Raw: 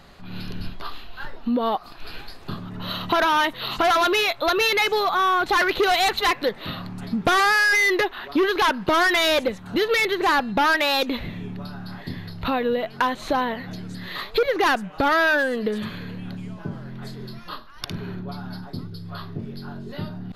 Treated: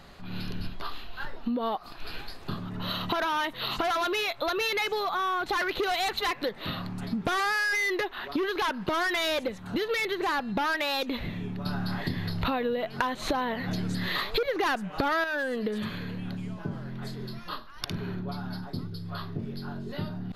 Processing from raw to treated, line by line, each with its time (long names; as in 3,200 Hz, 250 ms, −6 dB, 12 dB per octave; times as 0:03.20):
0:11.66–0:15.24: clip gain +8 dB
whole clip: downward compressor, threshold −25 dBFS; level −1.5 dB